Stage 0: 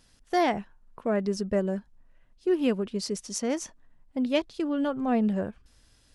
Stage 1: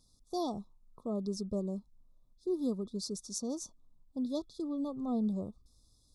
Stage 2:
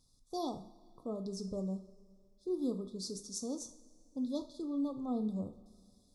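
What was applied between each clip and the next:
FFT band-reject 1300–3400 Hz; bell 810 Hz -8.5 dB 2.1 oct; gain -5 dB
reverb, pre-delay 3 ms, DRR 7.5 dB; gain -3 dB

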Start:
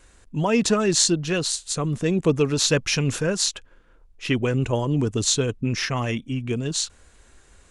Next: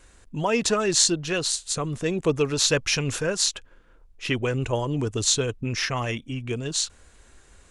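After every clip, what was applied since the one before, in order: dynamic EQ 200 Hz, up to -7 dB, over -36 dBFS, Q 1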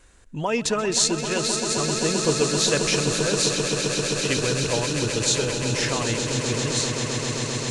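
swelling echo 0.131 s, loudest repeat 8, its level -10 dB; gain -1 dB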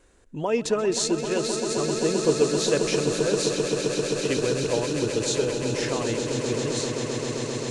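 bell 400 Hz +9 dB 1.8 oct; gain -6.5 dB

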